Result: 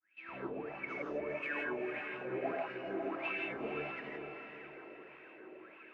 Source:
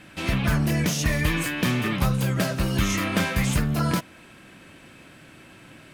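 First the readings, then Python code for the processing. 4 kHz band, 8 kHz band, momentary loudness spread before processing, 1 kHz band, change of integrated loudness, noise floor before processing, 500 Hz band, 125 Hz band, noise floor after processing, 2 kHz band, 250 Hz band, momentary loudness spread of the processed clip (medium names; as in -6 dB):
-23.5 dB, under -40 dB, 2 LU, -11.5 dB, -16.0 dB, -49 dBFS, -6.5 dB, -32.5 dB, -56 dBFS, -11.5 dB, -18.5 dB, 16 LU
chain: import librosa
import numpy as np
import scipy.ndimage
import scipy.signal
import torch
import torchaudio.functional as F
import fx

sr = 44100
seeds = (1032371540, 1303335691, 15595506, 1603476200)

y = fx.fade_in_head(x, sr, length_s=0.57)
y = fx.peak_eq(y, sr, hz=330.0, db=11.5, octaves=0.55)
y = fx.hum_notches(y, sr, base_hz=50, count=3)
y = fx.over_compress(y, sr, threshold_db=-24.0, ratio=-0.5)
y = fx.wah_lfo(y, sr, hz=1.6, low_hz=390.0, high_hz=2700.0, q=16.0)
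y = fx.spacing_loss(y, sr, db_at_10k=24)
y = fx.echo_diffused(y, sr, ms=464, feedback_pct=46, wet_db=-6)
y = fx.rev_gated(y, sr, seeds[0], gate_ms=190, shape='rising', drr_db=-1.0)
y = y * 10.0 ** (3.5 / 20.0)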